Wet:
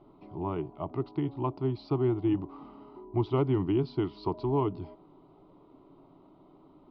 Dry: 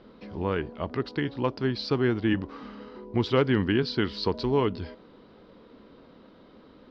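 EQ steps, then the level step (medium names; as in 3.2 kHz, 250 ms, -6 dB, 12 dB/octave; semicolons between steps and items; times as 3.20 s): low-pass 1.7 kHz 12 dB/octave; static phaser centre 330 Hz, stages 8; 0.0 dB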